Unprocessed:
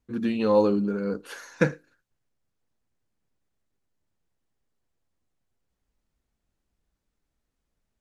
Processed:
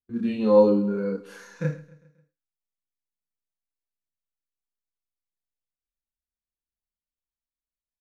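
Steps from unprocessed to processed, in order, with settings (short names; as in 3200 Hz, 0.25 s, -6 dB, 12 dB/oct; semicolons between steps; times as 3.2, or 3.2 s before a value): harmonic-percussive split percussive -17 dB; chorus voices 2, 0.37 Hz, delay 28 ms, depth 4.9 ms; gate with hold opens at -46 dBFS; on a send: feedback echo 0.134 s, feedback 52%, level -20 dB; on the sum: gain +4 dB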